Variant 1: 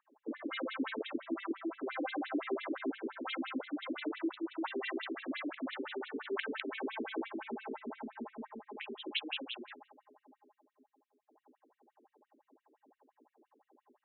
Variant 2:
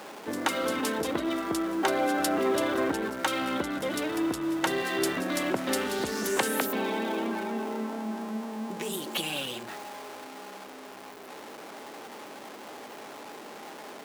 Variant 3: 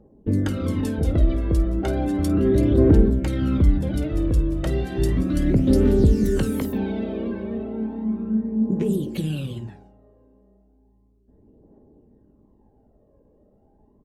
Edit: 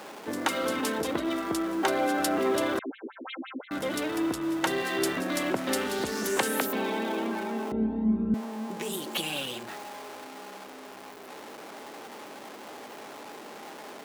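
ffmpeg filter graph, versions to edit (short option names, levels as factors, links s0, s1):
-filter_complex "[1:a]asplit=3[s0][s1][s2];[s0]atrim=end=2.792[s3];[0:a]atrim=start=2.788:end=3.712[s4];[s1]atrim=start=3.708:end=7.722[s5];[2:a]atrim=start=7.718:end=8.342[s6];[s2]atrim=start=8.338[s7];[s3][s4]acrossfade=d=0.004:c1=hsin:c2=hsin[s8];[s8][s5]acrossfade=d=0.004:c1=hsin:c2=hsin[s9];[s9][s6]acrossfade=d=0.004:c1=hsin:c2=hsin[s10];[s10][s7]acrossfade=d=0.004:c1=hsin:c2=hsin"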